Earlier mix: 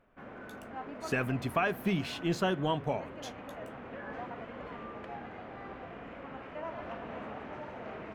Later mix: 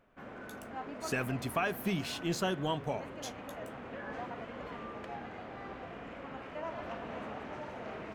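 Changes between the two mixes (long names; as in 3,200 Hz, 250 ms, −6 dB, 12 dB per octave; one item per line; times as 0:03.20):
speech −3.0 dB
master: add bass and treble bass 0 dB, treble +9 dB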